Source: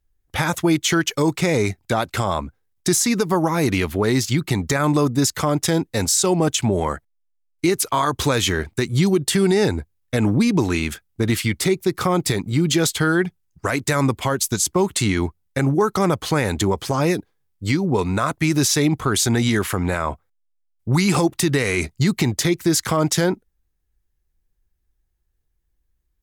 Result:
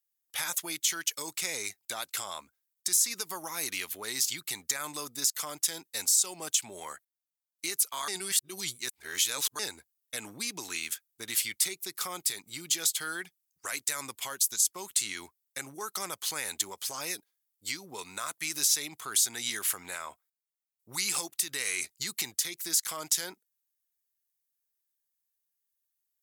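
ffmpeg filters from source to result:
-filter_complex "[0:a]asplit=3[s0][s1][s2];[s0]atrim=end=8.082[s3];[s1]atrim=start=8.078:end=9.592,asetpts=PTS-STARTPTS,areverse[s4];[s2]atrim=start=9.588[s5];[s3][s4]acrossfade=d=0.004:c1=hsin:c2=hsin[s6];[s6][s5]acrossfade=d=0.004:c1=hsin:c2=hsin,aderivative,alimiter=limit=0.211:level=0:latency=1:release=205"

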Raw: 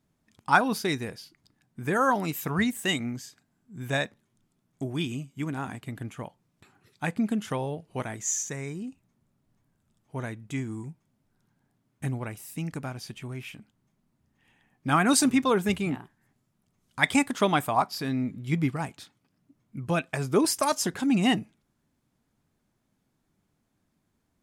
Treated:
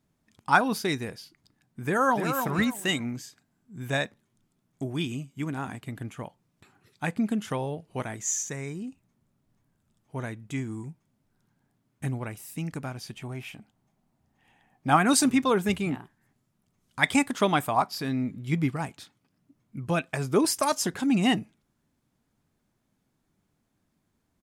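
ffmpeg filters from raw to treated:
-filter_complex "[0:a]asplit=2[s0][s1];[s1]afade=t=in:st=1.86:d=0.01,afade=t=out:st=2.34:d=0.01,aecho=0:1:300|600|900:0.473151|0.118288|0.029572[s2];[s0][s2]amix=inputs=2:normalize=0,asettb=1/sr,asplit=3[s3][s4][s5];[s3]atrim=end=13.174[s6];[s4]atrim=start=13.17:end=14.97,asetpts=PTS-STARTPTS,afade=t=in:d=0.004:c=qsin,afade=t=out:st=1.796:d=0.004:c=qsin,equalizer=f=750:w=2.5:g=9[s7];[s5]atrim=start=14.966[s8];[s6][s7]acrossfade=d=0.004:c1=hsin:c2=qsin[s9];[s9][s8]acrossfade=d=0.004:c1=qsin:c2=hsin"

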